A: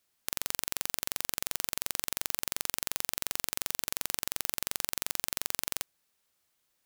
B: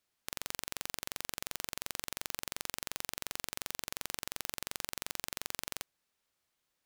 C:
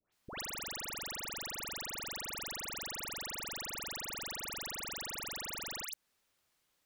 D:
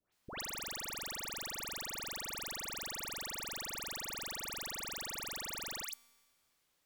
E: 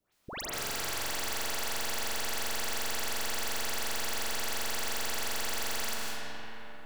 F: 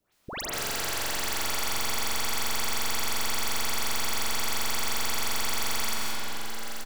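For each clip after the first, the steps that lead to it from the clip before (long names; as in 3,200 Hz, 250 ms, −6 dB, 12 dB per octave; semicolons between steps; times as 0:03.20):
high-shelf EQ 7,200 Hz −7 dB; level −3 dB
all-pass dispersion highs, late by 125 ms, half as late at 1,700 Hz; downward compressor 3 to 1, threshold −44 dBFS, peak gain reduction 5.5 dB; level +4.5 dB
tuned comb filter 83 Hz, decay 1.8 s, harmonics all, mix 40%; level +4 dB
in parallel at −2 dB: brickwall limiter −39 dBFS, peak gain reduction 10 dB; on the sum: convolution reverb RT60 4.6 s, pre-delay 110 ms, DRR −5.5 dB
single-tap delay 878 ms −8.5 dB; level +4 dB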